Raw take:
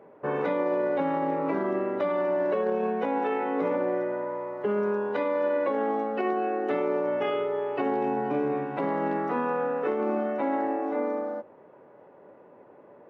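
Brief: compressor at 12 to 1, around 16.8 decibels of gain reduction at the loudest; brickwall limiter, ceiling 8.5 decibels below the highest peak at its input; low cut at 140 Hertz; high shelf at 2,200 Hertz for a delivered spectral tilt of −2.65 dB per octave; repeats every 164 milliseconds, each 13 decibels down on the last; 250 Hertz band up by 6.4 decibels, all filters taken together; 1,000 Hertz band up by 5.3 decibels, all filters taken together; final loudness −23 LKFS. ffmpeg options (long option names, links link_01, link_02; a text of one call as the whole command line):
ffmpeg -i in.wav -af "highpass=140,equalizer=frequency=250:width_type=o:gain=8,equalizer=frequency=1000:width_type=o:gain=7,highshelf=frequency=2200:gain=-4,acompressor=threshold=-36dB:ratio=12,alimiter=level_in=10dB:limit=-24dB:level=0:latency=1,volume=-10dB,aecho=1:1:164|328|492:0.224|0.0493|0.0108,volume=19.5dB" out.wav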